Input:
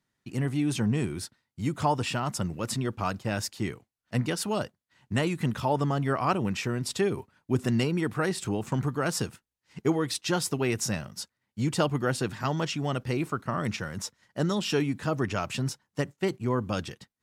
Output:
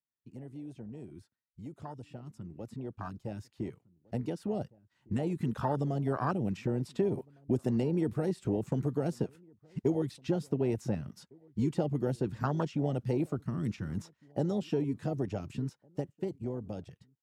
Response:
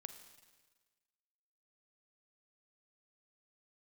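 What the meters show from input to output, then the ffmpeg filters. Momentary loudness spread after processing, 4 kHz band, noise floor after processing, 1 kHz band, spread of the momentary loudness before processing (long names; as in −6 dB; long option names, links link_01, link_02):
14 LU, −18.5 dB, −82 dBFS, −9.0 dB, 8 LU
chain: -filter_complex "[0:a]acrossover=split=300|3200[link_01][link_02][link_03];[link_01]acompressor=threshold=-40dB:ratio=4[link_04];[link_02]acompressor=threshold=-38dB:ratio=4[link_05];[link_03]acompressor=threshold=-47dB:ratio=4[link_06];[link_04][link_05][link_06]amix=inputs=3:normalize=0,afwtdn=0.0224,asplit=2[link_07][link_08];[link_08]adelay=1458,volume=-28dB,highshelf=frequency=4000:gain=-32.8[link_09];[link_07][link_09]amix=inputs=2:normalize=0,dynaudnorm=framelen=870:gausssize=9:maxgain=15.5dB,volume=-8.5dB"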